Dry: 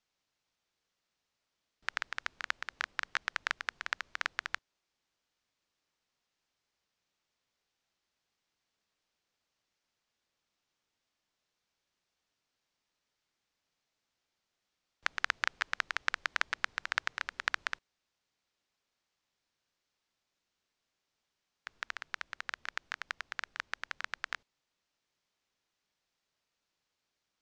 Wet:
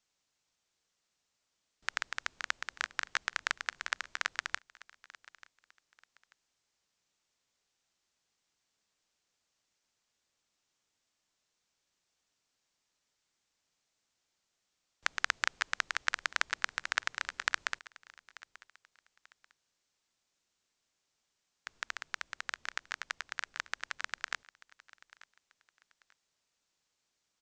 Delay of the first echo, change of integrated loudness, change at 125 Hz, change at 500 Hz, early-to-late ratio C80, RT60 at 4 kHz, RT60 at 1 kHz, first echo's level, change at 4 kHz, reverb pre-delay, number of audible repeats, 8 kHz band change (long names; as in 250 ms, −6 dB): 888 ms, +0.5 dB, can't be measured, 0.0 dB, no reverb audible, no reverb audible, no reverb audible, −20.5 dB, +2.0 dB, no reverb audible, 2, +6.5 dB